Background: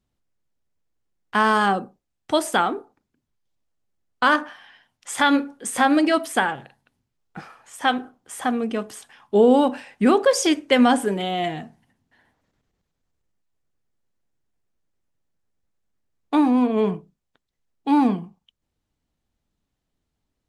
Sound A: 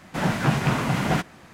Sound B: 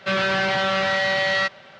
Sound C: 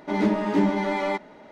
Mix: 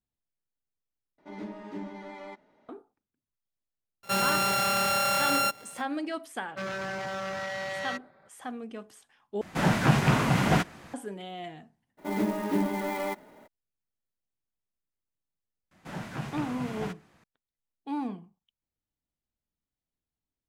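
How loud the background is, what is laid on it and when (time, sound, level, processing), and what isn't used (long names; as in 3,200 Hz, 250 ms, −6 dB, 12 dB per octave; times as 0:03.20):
background −15 dB
0:01.18: overwrite with C −17.5 dB
0:04.03: mix in B −4.5 dB + samples sorted by size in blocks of 32 samples
0:06.50: mix in B −11 dB + adaptive Wiener filter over 15 samples
0:09.41: overwrite with A −0.5 dB
0:11.97: mix in C −6 dB, fades 0.02 s + converter with an unsteady clock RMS 0.025 ms
0:15.71: mix in A −14.5 dB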